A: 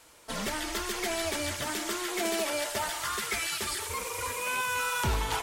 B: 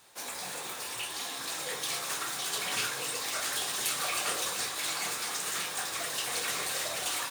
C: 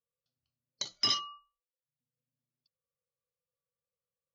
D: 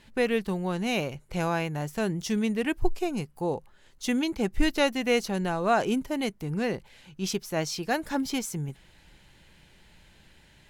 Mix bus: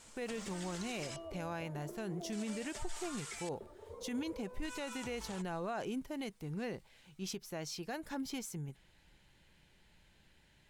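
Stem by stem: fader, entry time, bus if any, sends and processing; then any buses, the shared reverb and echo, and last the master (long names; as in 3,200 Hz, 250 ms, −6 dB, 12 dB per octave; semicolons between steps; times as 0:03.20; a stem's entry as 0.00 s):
−5.0 dB, 0.00 s, no send, downward compressor 10 to 1, threshold −40 dBFS, peak gain reduction 16 dB; auto-filter low-pass square 0.43 Hz 550–7,800 Hz
−10.0 dB, 0.00 s, no send, tuned comb filter 160 Hz, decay 0.28 s, harmonics all, mix 90%; soft clipping −39 dBFS, distortion −15 dB; automatic ducking −21 dB, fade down 1.35 s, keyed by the fourth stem
−14.0 dB, 0.00 s, no send, downward compressor, threshold −35 dBFS, peak gain reduction 10 dB
−10.0 dB, 0.00 s, no send, no processing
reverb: not used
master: brickwall limiter −31 dBFS, peak gain reduction 10 dB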